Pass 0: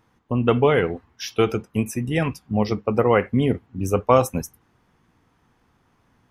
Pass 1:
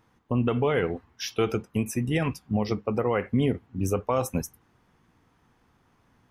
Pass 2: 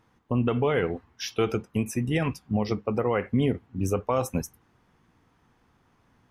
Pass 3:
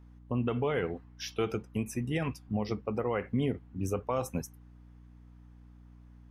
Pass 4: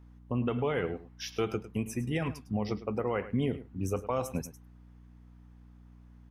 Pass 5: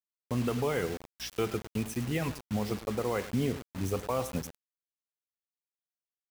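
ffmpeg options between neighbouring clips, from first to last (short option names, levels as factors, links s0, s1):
-af "alimiter=limit=0.237:level=0:latency=1:release=124,volume=0.841"
-af "highshelf=f=12000:g=-5.5"
-af "aeval=exprs='val(0)+0.00501*(sin(2*PI*60*n/s)+sin(2*PI*2*60*n/s)/2+sin(2*PI*3*60*n/s)/3+sin(2*PI*4*60*n/s)/4+sin(2*PI*5*60*n/s)/5)':c=same,volume=0.501"
-af "aecho=1:1:105:0.178"
-af "acrusher=bits=6:mix=0:aa=0.000001"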